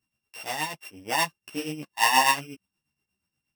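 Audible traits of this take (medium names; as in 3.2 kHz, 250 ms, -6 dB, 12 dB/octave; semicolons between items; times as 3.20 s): a buzz of ramps at a fixed pitch in blocks of 16 samples; tremolo triangle 8.4 Hz, depth 70%; a shimmering, thickened sound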